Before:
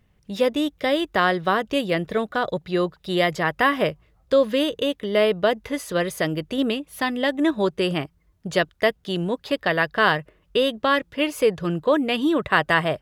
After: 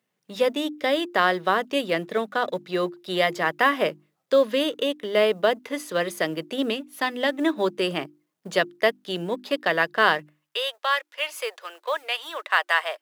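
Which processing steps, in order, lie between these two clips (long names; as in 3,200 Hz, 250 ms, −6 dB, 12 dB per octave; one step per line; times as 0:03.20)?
mu-law and A-law mismatch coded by A
Bessel high-pass filter 250 Hz, order 8, from 0:10.19 910 Hz
mains-hum notches 50/100/150/200/250/300/350 Hz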